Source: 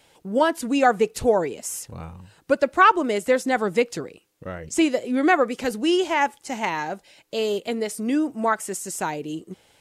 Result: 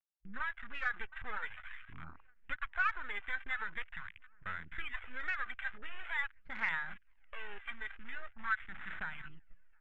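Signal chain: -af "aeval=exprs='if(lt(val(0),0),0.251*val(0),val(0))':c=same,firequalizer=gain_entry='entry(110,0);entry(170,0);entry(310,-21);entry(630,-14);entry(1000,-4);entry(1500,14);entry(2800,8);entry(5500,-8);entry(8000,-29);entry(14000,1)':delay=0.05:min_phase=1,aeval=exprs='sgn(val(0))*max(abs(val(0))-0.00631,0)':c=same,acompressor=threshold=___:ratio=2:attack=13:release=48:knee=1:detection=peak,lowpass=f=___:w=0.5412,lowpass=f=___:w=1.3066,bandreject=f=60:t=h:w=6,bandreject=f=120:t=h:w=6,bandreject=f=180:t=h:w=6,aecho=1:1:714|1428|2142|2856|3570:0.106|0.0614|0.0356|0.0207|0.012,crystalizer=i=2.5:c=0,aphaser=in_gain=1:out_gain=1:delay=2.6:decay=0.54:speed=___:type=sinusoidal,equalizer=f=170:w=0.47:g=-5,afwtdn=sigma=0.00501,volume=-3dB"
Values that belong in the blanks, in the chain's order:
-48dB, 2200, 2200, 0.45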